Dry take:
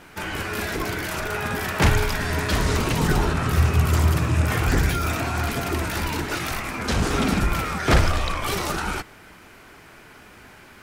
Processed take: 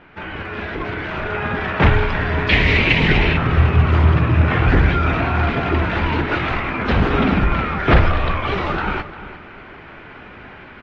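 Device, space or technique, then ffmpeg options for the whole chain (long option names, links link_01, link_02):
action camera in a waterproof case: -filter_complex "[0:a]asettb=1/sr,asplit=3[link_01][link_02][link_03];[link_01]atrim=end=2.494[link_04];[link_02]atrim=start=2.49:end=3.37,asetpts=PTS-STARTPTS,afade=type=in:duration=0.004:curve=qsin,afade=type=out:start_time=0.876:duration=0.004:curve=qsin,highshelf=frequency=1700:width_type=q:width=3:gain=8[link_05];[link_03]atrim=start=3.366[link_06];[link_04][link_05]acrossfade=duration=0.004:curve1=hsin:curve2=qsin[link_07];[link_07][link_06]acrossfade=duration=0.004:curve1=qsin:curve2=hsin,lowpass=frequency=3000:width=0.5412,lowpass=frequency=3000:width=1.3066,asplit=2[link_08][link_09];[link_09]adelay=351,lowpass=frequency=3700:poles=1,volume=-14.5dB,asplit=2[link_10][link_11];[link_11]adelay=351,lowpass=frequency=3700:poles=1,volume=0.29,asplit=2[link_12][link_13];[link_13]adelay=351,lowpass=frequency=3700:poles=1,volume=0.29[link_14];[link_08][link_10][link_12][link_14]amix=inputs=4:normalize=0,dynaudnorm=framelen=240:gausssize=9:maxgain=8.5dB" -ar 32000 -c:a aac -b:a 48k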